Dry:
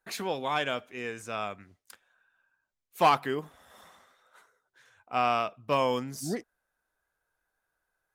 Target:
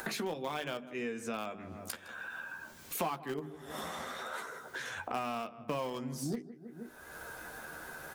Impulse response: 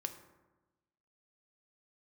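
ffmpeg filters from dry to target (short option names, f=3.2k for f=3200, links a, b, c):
-filter_complex "[0:a]asplit=2[a][b];[b]adelay=13,volume=-6.5dB[c];[a][c]amix=inputs=2:normalize=0,acrossover=split=250|4200[d][e][f];[f]asoftclip=type=tanh:threshold=-36.5dB[g];[d][e][g]amix=inputs=3:normalize=0,highpass=f=60:p=1,asplit=2[h][i];[i]adelay=158,lowpass=f=1.9k:p=1,volume=-18.5dB,asplit=2[j][k];[k]adelay=158,lowpass=f=1.9k:p=1,volume=0.32,asplit=2[l][m];[m]adelay=158,lowpass=f=1.9k:p=1,volume=0.32[n];[h][j][l][n]amix=inputs=4:normalize=0,asplit=2[o][p];[p]acrusher=bits=3:mix=0:aa=0.000001,volume=-11dB[q];[o][q]amix=inputs=2:normalize=0,acompressor=mode=upward:threshold=-37dB:ratio=2.5,equalizer=f=220:t=o:w=1.9:g=8.5,bandreject=f=50:t=h:w=6,bandreject=f=100:t=h:w=6,bandreject=f=150:t=h:w=6,bandreject=f=200:t=h:w=6,bandreject=f=250:t=h:w=6,bandreject=f=300:t=h:w=6,bandreject=f=350:t=h:w=6,bandreject=f=400:t=h:w=6,acompressor=threshold=-47dB:ratio=5,volume=10dB"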